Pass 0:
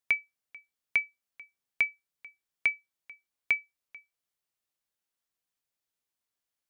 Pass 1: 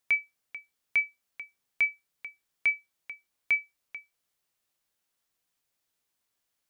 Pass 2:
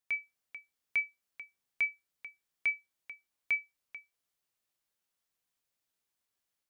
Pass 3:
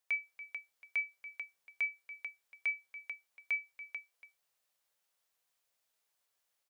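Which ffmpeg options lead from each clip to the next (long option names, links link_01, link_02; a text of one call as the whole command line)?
ffmpeg -i in.wav -af "alimiter=level_in=1.5dB:limit=-24dB:level=0:latency=1:release=14,volume=-1.5dB,volume=7dB" out.wav
ffmpeg -i in.wav -af "dynaudnorm=framelen=120:gausssize=3:maxgain=4dB,volume=-9dB" out.wav
ffmpeg -i in.wav -af "alimiter=level_in=7dB:limit=-24dB:level=0:latency=1:release=141,volume=-7dB,lowshelf=frequency=400:width_type=q:width=1.5:gain=-7,aecho=1:1:285:0.188,volume=3.5dB" out.wav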